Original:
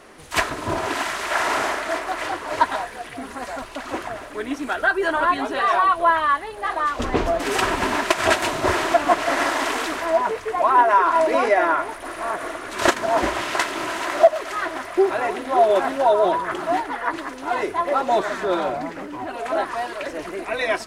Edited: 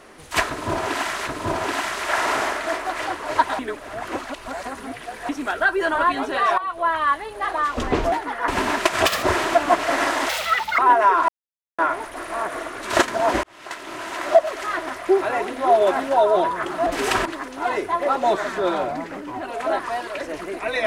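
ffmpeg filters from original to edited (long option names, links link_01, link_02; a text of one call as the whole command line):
ffmpeg -i in.wav -filter_complex "[0:a]asplit=16[link_01][link_02][link_03][link_04][link_05][link_06][link_07][link_08][link_09][link_10][link_11][link_12][link_13][link_14][link_15][link_16];[link_01]atrim=end=1.272[link_17];[link_02]atrim=start=0.488:end=2.812[link_18];[link_03]atrim=start=2.808:end=4.512,asetpts=PTS-STARTPTS,areverse[link_19];[link_04]atrim=start=4.508:end=5.8,asetpts=PTS-STARTPTS,afade=type=out:start_time=1.288:duration=0.004:curve=hsin:silence=0.188365[link_20];[link_05]atrim=start=5.8:end=7.342,asetpts=PTS-STARTPTS,afade=type=in:duration=0.54:silence=0.188365[link_21];[link_06]atrim=start=16.748:end=17.112[link_22];[link_07]atrim=start=7.728:end=8.314[link_23];[link_08]atrim=start=8.31:end=8.62,asetpts=PTS-STARTPTS,asetrate=80703,aresample=44100,atrim=end_sample=7470,asetpts=PTS-STARTPTS[link_24];[link_09]atrim=start=8.616:end=9.684[link_25];[link_10]atrim=start=9.68:end=10.67,asetpts=PTS-STARTPTS,asetrate=88200,aresample=44100[link_26];[link_11]atrim=start=10.666:end=11.17,asetpts=PTS-STARTPTS,afade=type=out:start_time=0.5:duration=0.004:curve=hsin[link_27];[link_12]atrim=start=11.17:end=11.67,asetpts=PTS-STARTPTS,volume=0[link_28];[link_13]atrim=start=11.67:end=13.32,asetpts=PTS-STARTPTS,afade=type=in:duration=0.004:curve=hsin,afade=type=out:start_time=1.646:duration=0.004:curve=hsin[link_29];[link_14]atrim=start=13.32:end=16.752,asetpts=PTS-STARTPTS,afade=type=in:duration=1.06[link_30];[link_15]atrim=start=7.338:end=7.732[link_31];[link_16]atrim=start=17.108[link_32];[link_17][link_18]acrossfade=duration=0.004:curve1=hsin:curve2=hsin[link_33];[link_33][link_19]acrossfade=duration=0.004:curve1=hsin:curve2=hsin[link_34];[link_20][link_21]concat=n=2:v=0:a=1[link_35];[link_34][link_35]acrossfade=duration=0.004:curve1=hsin:curve2=hsin[link_36];[link_36][link_22]acrossfade=duration=0.004:curve1=hsin:curve2=hsin[link_37];[link_37][link_23]acrossfade=duration=0.004:curve1=hsin:curve2=hsin[link_38];[link_38][link_24]acrossfade=duration=0.004:curve1=hsin:curve2=hsin[link_39];[link_39][link_25]acrossfade=duration=0.004:curve1=hsin:curve2=hsin[link_40];[link_40][link_26]acrossfade=duration=0.004:curve1=hsin:curve2=hsin[link_41];[link_27][link_28][link_29][link_30]concat=n=4:v=0:a=1[link_42];[link_41][link_42]acrossfade=duration=0.004:curve1=hsin:curve2=hsin[link_43];[link_43][link_31]acrossfade=duration=0.004:curve1=hsin:curve2=hsin[link_44];[link_44][link_32]acrossfade=duration=0.004:curve1=hsin:curve2=hsin" out.wav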